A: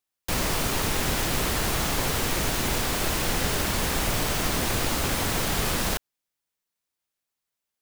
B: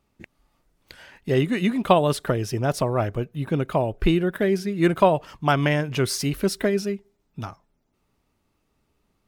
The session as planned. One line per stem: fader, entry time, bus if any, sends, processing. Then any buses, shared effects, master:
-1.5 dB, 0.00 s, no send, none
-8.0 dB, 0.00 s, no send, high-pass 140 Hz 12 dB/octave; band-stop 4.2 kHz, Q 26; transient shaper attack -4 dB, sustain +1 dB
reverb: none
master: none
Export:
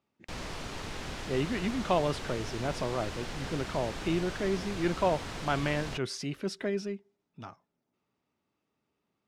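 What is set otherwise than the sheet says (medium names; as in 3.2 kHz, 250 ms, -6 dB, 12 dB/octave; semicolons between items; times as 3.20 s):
stem A -1.5 dB -> -12.5 dB; master: extra low-pass 5.7 kHz 12 dB/octave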